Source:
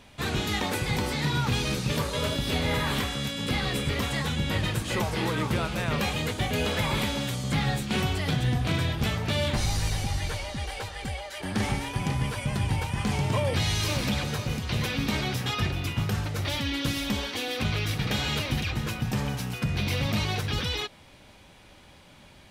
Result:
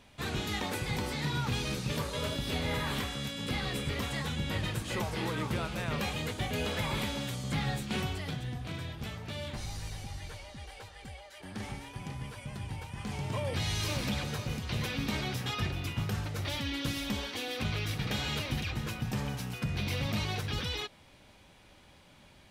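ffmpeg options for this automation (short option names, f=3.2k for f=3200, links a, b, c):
-af "volume=1dB,afade=t=out:st=7.93:d=0.53:silence=0.473151,afade=t=in:st=12.9:d=0.91:silence=0.446684"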